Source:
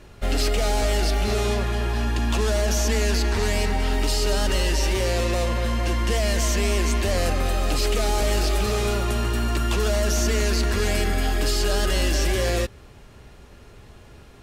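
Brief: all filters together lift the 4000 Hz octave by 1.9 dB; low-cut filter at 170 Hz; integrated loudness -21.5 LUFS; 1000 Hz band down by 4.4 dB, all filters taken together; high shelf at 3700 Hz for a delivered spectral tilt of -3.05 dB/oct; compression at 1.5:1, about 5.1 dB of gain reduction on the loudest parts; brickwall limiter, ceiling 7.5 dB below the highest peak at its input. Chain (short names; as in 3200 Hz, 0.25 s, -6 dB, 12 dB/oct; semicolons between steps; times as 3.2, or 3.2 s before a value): HPF 170 Hz; bell 1000 Hz -6 dB; high shelf 3700 Hz -7 dB; bell 4000 Hz +7.5 dB; compressor 1.5:1, threshold -37 dBFS; gain +11.5 dB; limiter -13 dBFS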